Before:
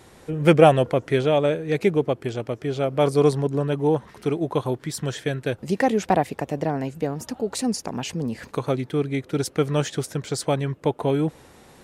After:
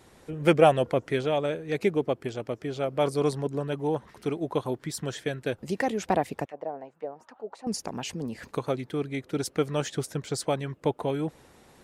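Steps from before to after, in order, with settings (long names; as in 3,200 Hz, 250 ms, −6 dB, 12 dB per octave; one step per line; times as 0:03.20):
0:06.45–0:07.67: envelope filter 580–2,000 Hz, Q 2, down, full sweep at −20.5 dBFS
harmonic and percussive parts rebalanced percussive +5 dB
level −8.5 dB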